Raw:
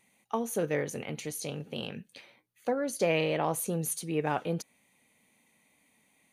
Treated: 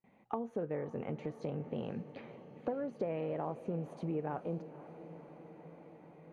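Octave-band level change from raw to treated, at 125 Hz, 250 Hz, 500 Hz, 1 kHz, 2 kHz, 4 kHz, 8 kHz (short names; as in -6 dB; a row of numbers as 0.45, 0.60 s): -4.5 dB, -5.0 dB, -6.5 dB, -8.0 dB, -16.5 dB, under -20 dB, under -35 dB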